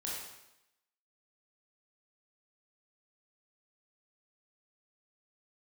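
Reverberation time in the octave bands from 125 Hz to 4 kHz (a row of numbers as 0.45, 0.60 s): 0.80, 0.90, 0.90, 0.90, 0.85, 0.85 s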